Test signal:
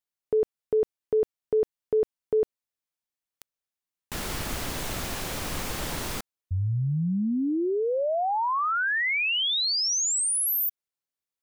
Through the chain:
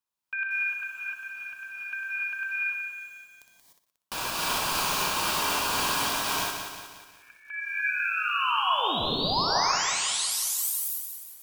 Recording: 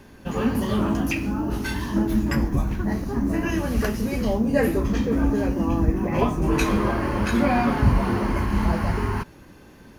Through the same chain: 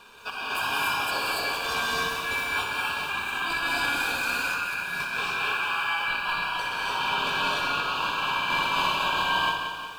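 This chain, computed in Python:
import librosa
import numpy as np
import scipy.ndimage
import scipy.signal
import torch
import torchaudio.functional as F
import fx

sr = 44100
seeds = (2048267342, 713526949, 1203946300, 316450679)

y = fx.chopper(x, sr, hz=2.0, depth_pct=65, duty_pct=60)
y = scipy.signal.sosfilt(scipy.signal.cheby1(6, 1.0, 340.0, 'highpass', fs=sr, output='sos'), y)
y = fx.over_compress(y, sr, threshold_db=-32.0, ratio=-1.0)
y = fx.dynamic_eq(y, sr, hz=2700.0, q=3.8, threshold_db=-53.0, ratio=4.0, max_db=4)
y = y * np.sin(2.0 * np.pi * 2000.0 * np.arange(len(y)) / sr)
y = fx.peak_eq(y, sr, hz=1000.0, db=9.0, octaves=0.45)
y = fx.room_flutter(y, sr, wall_m=10.5, rt60_s=0.44)
y = fx.rev_gated(y, sr, seeds[0], gate_ms=320, shape='rising', drr_db=-4.0)
y = fx.echo_crushed(y, sr, ms=180, feedback_pct=55, bits=9, wet_db=-7.0)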